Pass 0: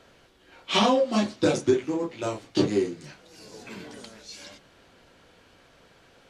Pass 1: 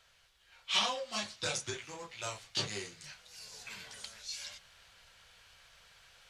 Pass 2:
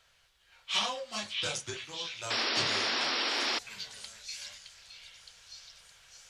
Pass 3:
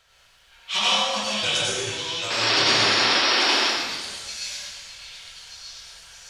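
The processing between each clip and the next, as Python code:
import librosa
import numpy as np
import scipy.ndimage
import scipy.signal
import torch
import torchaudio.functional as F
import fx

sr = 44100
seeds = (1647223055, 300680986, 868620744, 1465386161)

y1 = fx.tone_stack(x, sr, knobs='10-0-10')
y1 = fx.rider(y1, sr, range_db=3, speed_s=2.0)
y2 = fx.echo_stepped(y1, sr, ms=616, hz=2700.0, octaves=0.7, feedback_pct=70, wet_db=-3.5)
y2 = fx.spec_paint(y2, sr, seeds[0], shape='noise', start_s=2.3, length_s=1.29, low_hz=220.0, high_hz=5700.0, level_db=-31.0)
y3 = fx.rev_plate(y2, sr, seeds[1], rt60_s=1.3, hf_ratio=0.9, predelay_ms=75, drr_db=-5.5)
y3 = y3 * 10.0 ** (4.5 / 20.0)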